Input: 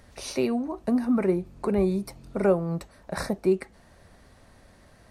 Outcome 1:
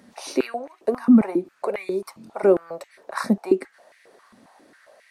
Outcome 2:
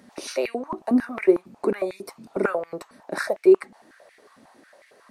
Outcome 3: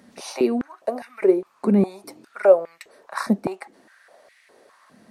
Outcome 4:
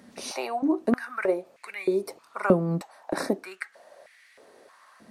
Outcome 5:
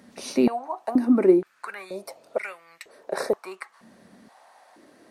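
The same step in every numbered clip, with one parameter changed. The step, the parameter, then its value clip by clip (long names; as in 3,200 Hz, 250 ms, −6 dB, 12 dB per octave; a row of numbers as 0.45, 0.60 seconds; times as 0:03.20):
high-pass on a step sequencer, speed: 7.4, 11, 4.9, 3.2, 2.1 Hertz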